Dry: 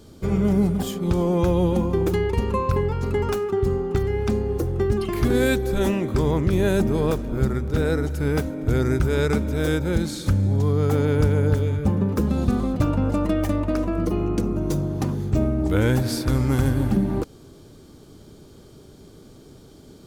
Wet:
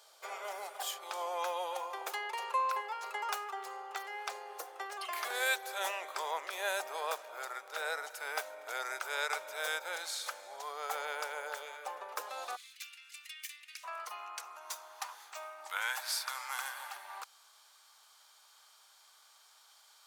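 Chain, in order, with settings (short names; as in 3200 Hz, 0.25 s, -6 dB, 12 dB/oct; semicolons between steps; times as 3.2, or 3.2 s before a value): steep high-pass 650 Hz 36 dB/oct, from 12.55 s 2100 Hz, from 13.83 s 860 Hz; gain -3.5 dB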